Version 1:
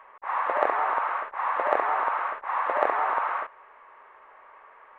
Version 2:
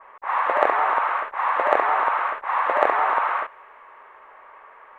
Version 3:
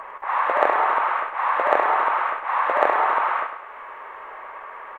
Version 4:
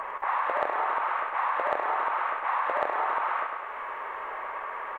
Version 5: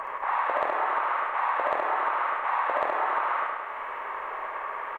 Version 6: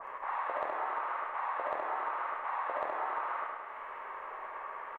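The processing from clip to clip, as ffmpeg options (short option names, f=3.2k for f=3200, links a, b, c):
-af "adynamicequalizer=threshold=0.0141:dfrequency=2100:dqfactor=0.7:tfrequency=2100:tqfactor=0.7:attack=5:release=100:ratio=0.375:range=2:mode=boostabove:tftype=highshelf,volume=4.5dB"
-filter_complex "[0:a]acompressor=mode=upward:threshold=-28dB:ratio=2.5,asplit=2[a][b];[b]aecho=0:1:103|206|309|412|515:0.335|0.154|0.0709|0.0326|0.015[c];[a][c]amix=inputs=2:normalize=0"
-af "acompressor=threshold=-28dB:ratio=4,volume=2dB"
-filter_complex "[0:a]asplit=2[a][b];[b]adelay=50,volume=-12dB[c];[a][c]amix=inputs=2:normalize=0,asplit=2[d][e];[e]aecho=0:1:72:0.531[f];[d][f]amix=inputs=2:normalize=0"
-filter_complex "[0:a]asplit=2[a][b];[b]adelay=13,volume=-12dB[c];[a][c]amix=inputs=2:normalize=0,adynamicequalizer=threshold=0.0158:dfrequency=1800:dqfactor=0.7:tfrequency=1800:tqfactor=0.7:attack=5:release=100:ratio=0.375:range=2:mode=cutabove:tftype=highshelf,volume=-8.5dB"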